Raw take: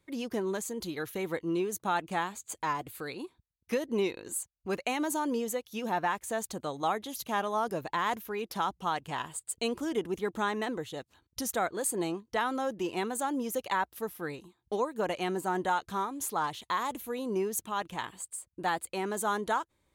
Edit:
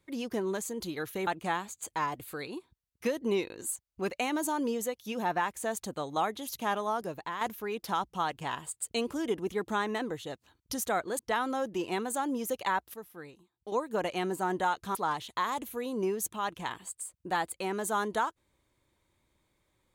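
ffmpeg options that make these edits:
-filter_complex "[0:a]asplit=7[a][b][c][d][e][f][g];[a]atrim=end=1.272[h];[b]atrim=start=1.938:end=8.08,asetpts=PTS-STARTPTS,afade=t=out:st=5.492:d=0.65:silence=0.398107[i];[c]atrim=start=8.08:end=11.862,asetpts=PTS-STARTPTS,afade=t=in:d=0.004:c=hsin:silence=0.398107[j];[d]atrim=start=12.238:end=13.992[k];[e]atrim=start=13.988:end=14.772,asetpts=PTS-STARTPTS,volume=-9dB[l];[f]atrim=start=14.768:end=16.002[m];[g]atrim=start=16.278[n];[i][j]concat=n=2:v=0:a=1[o];[h][o]acrossfade=d=0.004:c1=hsin:c2=hsin[p];[p][k]acrossfade=d=0.004:c1=hsin:c2=hsin[q];[q][l]acrossfade=d=0.004:c1=hsin:c2=hsin[r];[r][m]acrossfade=d=0.004:c1=hsin:c2=hsin[s];[s][n]acrossfade=d=0.004:c1=hsin:c2=hsin"

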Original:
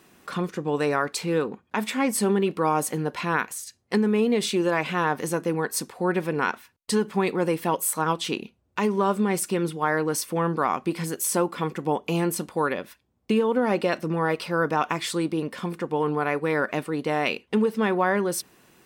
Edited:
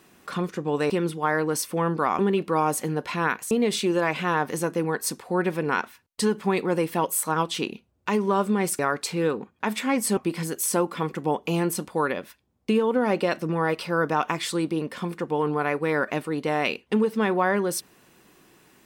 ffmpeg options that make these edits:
-filter_complex "[0:a]asplit=6[a][b][c][d][e][f];[a]atrim=end=0.902[g];[b]atrim=start=9.488:end=10.782[h];[c]atrim=start=2.278:end=3.602[i];[d]atrim=start=4.208:end=9.492[j];[e]atrim=start=0.898:end=2.282[k];[f]atrim=start=10.778[l];[g][h]acrossfade=d=0.004:c1=hsin:c2=hsin[m];[m][i]acrossfade=d=0.004:c1=hsin:c2=hsin[n];[n][j]acrossfade=d=0.004:c1=hsin:c2=hsin[o];[o][k]acrossfade=d=0.004:c1=hsin:c2=hsin[p];[p][l]acrossfade=d=0.004:c1=hsin:c2=hsin"

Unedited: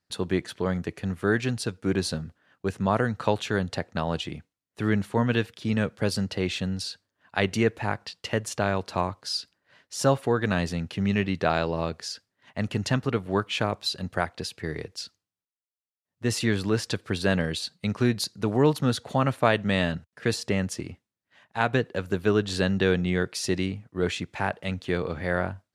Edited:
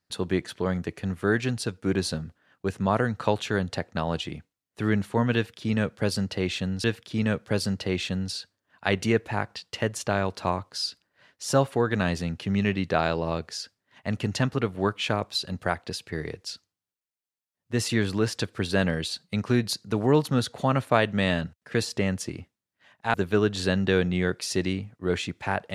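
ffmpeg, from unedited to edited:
-filter_complex "[0:a]asplit=3[a][b][c];[a]atrim=end=6.842[d];[b]atrim=start=5.348:end=21.652[e];[c]atrim=start=22.068[f];[d][e]acrossfade=d=0.004:c1=hsin:c2=hsin[g];[g][f]acrossfade=d=0.004:c1=hsin:c2=hsin"

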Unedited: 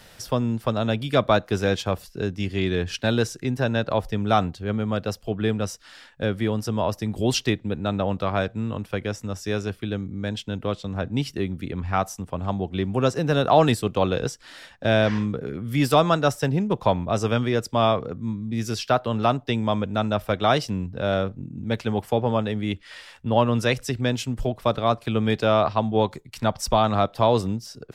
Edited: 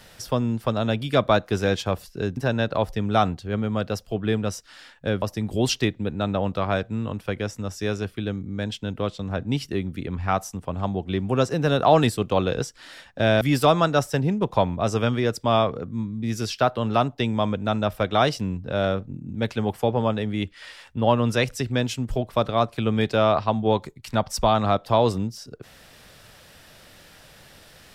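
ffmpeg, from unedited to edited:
-filter_complex "[0:a]asplit=4[a][b][c][d];[a]atrim=end=2.372[e];[b]atrim=start=3.528:end=6.382[f];[c]atrim=start=6.868:end=15.062[g];[d]atrim=start=15.698[h];[e][f]acrossfade=d=0.004:c1=hsin:c2=hsin[i];[i][g]acrossfade=d=0.004:c1=hsin:c2=hsin[j];[j][h]acrossfade=d=0.004:c1=hsin:c2=hsin"

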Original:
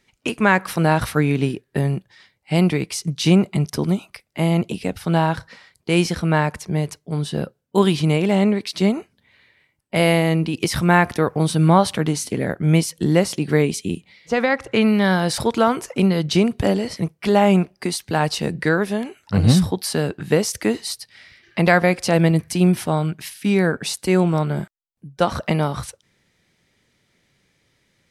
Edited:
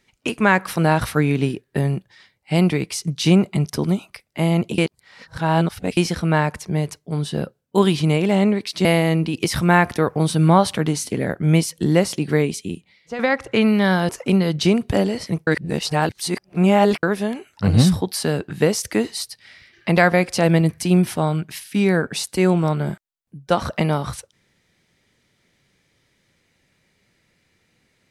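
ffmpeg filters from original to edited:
-filter_complex "[0:a]asplit=8[a][b][c][d][e][f][g][h];[a]atrim=end=4.782[i];[b]atrim=start=4.778:end=5.972,asetpts=PTS-STARTPTS,areverse[j];[c]atrim=start=5.968:end=8.852[k];[d]atrim=start=10.048:end=14.39,asetpts=PTS-STARTPTS,afade=t=out:st=3.342:d=1:silence=0.316228[l];[e]atrim=start=14.39:end=15.292,asetpts=PTS-STARTPTS,afade=t=in:d=0.004:c=hsin:silence=0.316228[m];[f]atrim=start=15.788:end=17.172[n];[g]atrim=start=17.168:end=18.732,asetpts=PTS-STARTPTS,areverse[o];[h]atrim=start=18.728[p];[i][j]acrossfade=d=0.004:c1=hsin:c2=hsin[q];[q][k]acrossfade=d=0.004:c1=hsin:c2=hsin[r];[l][m]concat=n=2:v=0:a=1[s];[r][s]acrossfade=d=0.004:c1=hsin:c2=hsin[t];[t][n]acrossfade=d=0.004:c1=hsin:c2=hsin[u];[u][o]acrossfade=d=0.004:c1=hsin:c2=hsin[v];[v][p]acrossfade=d=0.004:c1=hsin:c2=hsin"

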